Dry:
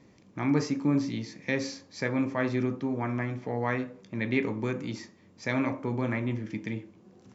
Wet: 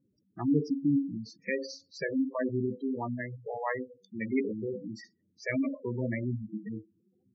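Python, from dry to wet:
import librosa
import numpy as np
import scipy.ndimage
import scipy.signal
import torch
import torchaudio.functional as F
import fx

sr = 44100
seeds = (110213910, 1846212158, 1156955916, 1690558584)

y = fx.noise_reduce_blind(x, sr, reduce_db=15)
y = fx.hum_notches(y, sr, base_hz=60, count=8, at=(3.14, 4.74))
y = fx.spec_gate(y, sr, threshold_db=-10, keep='strong')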